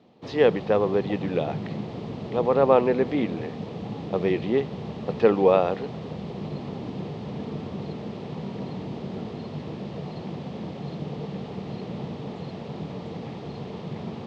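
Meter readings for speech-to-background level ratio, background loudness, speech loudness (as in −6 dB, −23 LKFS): 11.5 dB, −35.0 LKFS, −23.5 LKFS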